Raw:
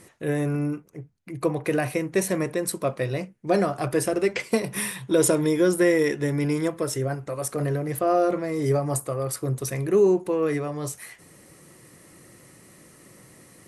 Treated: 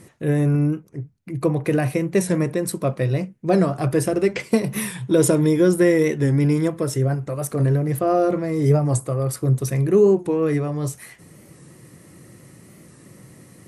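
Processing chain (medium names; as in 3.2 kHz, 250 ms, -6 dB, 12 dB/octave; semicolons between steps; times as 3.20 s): peaking EQ 130 Hz +9 dB 2.6 oct; warped record 45 rpm, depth 100 cents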